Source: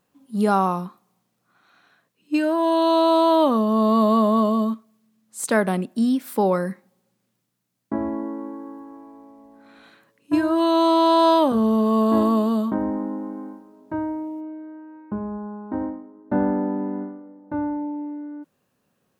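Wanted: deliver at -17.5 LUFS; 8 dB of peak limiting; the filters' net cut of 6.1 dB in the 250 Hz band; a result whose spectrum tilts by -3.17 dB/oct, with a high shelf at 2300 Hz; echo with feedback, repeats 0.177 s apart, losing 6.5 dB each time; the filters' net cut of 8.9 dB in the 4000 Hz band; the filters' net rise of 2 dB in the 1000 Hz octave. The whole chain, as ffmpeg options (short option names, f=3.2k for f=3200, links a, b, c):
-af "equalizer=f=250:t=o:g=-8,equalizer=f=1k:t=o:g=3.5,highshelf=f=2.3k:g=-3.5,equalizer=f=4k:t=o:g=-8,alimiter=limit=-14dB:level=0:latency=1,aecho=1:1:177|354|531|708|885|1062:0.473|0.222|0.105|0.0491|0.0231|0.0109,volume=7dB"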